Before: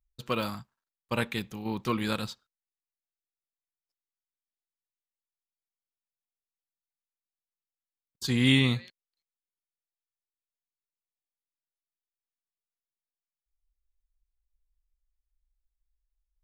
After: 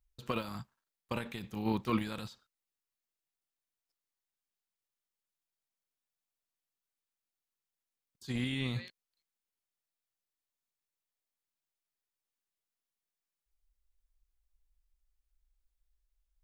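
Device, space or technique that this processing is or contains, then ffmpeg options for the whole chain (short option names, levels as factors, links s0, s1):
de-esser from a sidechain: -filter_complex "[0:a]asplit=2[s0][s1];[s1]highpass=f=5300:w=0.5412,highpass=f=5300:w=1.3066,apad=whole_len=724608[s2];[s0][s2]sidechaincompress=threshold=0.00141:ratio=6:attack=0.91:release=26,volume=1.26"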